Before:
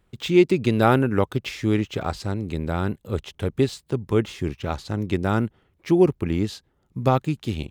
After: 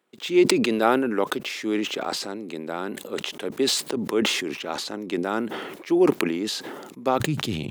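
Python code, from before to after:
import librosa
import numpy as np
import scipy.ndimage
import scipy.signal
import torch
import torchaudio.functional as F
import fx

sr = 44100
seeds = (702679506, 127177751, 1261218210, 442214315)

y = fx.highpass(x, sr, hz=fx.steps((0.0, 250.0), (7.2, 120.0)), slope=24)
y = fx.sustainer(y, sr, db_per_s=37.0)
y = F.gain(torch.from_numpy(y), -2.0).numpy()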